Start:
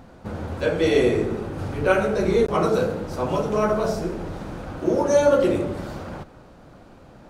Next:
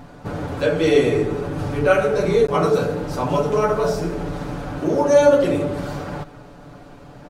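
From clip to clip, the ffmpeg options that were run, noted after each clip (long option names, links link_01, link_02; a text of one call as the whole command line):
ffmpeg -i in.wav -filter_complex "[0:a]aecho=1:1:6.9:0.65,asplit=2[link_01][link_02];[link_02]acompressor=threshold=-26dB:ratio=6,volume=-2dB[link_03];[link_01][link_03]amix=inputs=2:normalize=0,volume=-1dB" out.wav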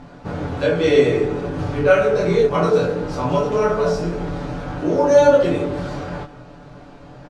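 ffmpeg -i in.wav -filter_complex "[0:a]lowpass=6500,asplit=2[link_01][link_02];[link_02]adelay=23,volume=-2.5dB[link_03];[link_01][link_03]amix=inputs=2:normalize=0,volume=-1dB" out.wav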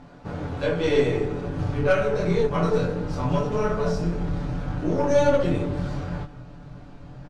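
ffmpeg -i in.wav -af "aeval=exprs='0.891*(cos(1*acos(clip(val(0)/0.891,-1,1)))-cos(1*PI/2))+0.0316*(cos(8*acos(clip(val(0)/0.891,-1,1)))-cos(8*PI/2))':channel_layout=same,asubboost=boost=2.5:cutoff=240,volume=-6dB" out.wav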